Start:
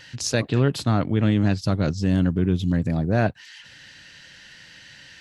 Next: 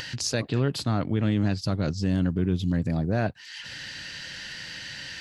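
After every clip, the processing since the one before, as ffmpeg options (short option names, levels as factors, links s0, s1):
-filter_complex "[0:a]asplit=2[s0][s1];[s1]alimiter=limit=0.188:level=0:latency=1:release=64,volume=0.944[s2];[s0][s2]amix=inputs=2:normalize=0,equalizer=f=4700:w=6:g=5,acompressor=mode=upward:threshold=0.112:ratio=2.5,volume=0.376"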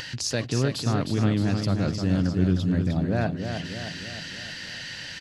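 -af "aecho=1:1:309|618|927|1236|1545|1854|2163:0.473|0.265|0.148|0.0831|0.0465|0.0261|0.0146"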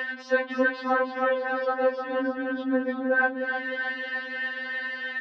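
-af "aeval=exprs='val(0)+0.0112*(sin(2*PI*50*n/s)+sin(2*PI*2*50*n/s)/2+sin(2*PI*3*50*n/s)/3+sin(2*PI*4*50*n/s)/4+sin(2*PI*5*50*n/s)/5)':c=same,highpass=460,equalizer=f=480:t=q:w=4:g=5,equalizer=f=940:t=q:w=4:g=8,equalizer=f=1600:t=q:w=4:g=6,equalizer=f=2400:t=q:w=4:g=-9,lowpass=f=2600:w=0.5412,lowpass=f=2600:w=1.3066,afftfilt=real='re*3.46*eq(mod(b,12),0)':imag='im*3.46*eq(mod(b,12),0)':win_size=2048:overlap=0.75,volume=2.51"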